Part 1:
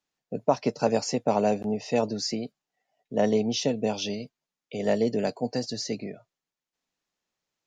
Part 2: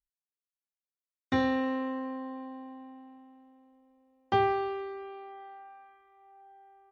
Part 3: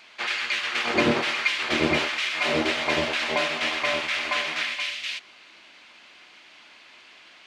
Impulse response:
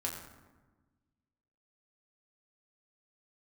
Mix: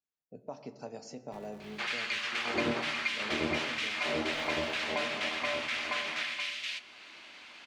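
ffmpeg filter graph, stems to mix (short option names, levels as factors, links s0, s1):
-filter_complex "[0:a]volume=0.112,asplit=3[s0][s1][s2];[s1]volume=0.473[s3];[1:a]aeval=exprs='val(0)*gte(abs(val(0)),0.015)':c=same,aeval=exprs='val(0)*sgn(sin(2*PI*110*n/s))':c=same,volume=0.2[s4];[2:a]adelay=1600,volume=0.794,asplit=2[s5][s6];[s6]volume=0.266[s7];[s2]apad=whole_len=304981[s8];[s4][s8]sidechaincompress=threshold=0.00631:ratio=8:attack=16:release=982[s9];[3:a]atrim=start_sample=2205[s10];[s3][s7]amix=inputs=2:normalize=0[s11];[s11][s10]afir=irnorm=-1:irlink=0[s12];[s0][s9][s5][s12]amix=inputs=4:normalize=0,acompressor=threshold=0.00631:ratio=1.5"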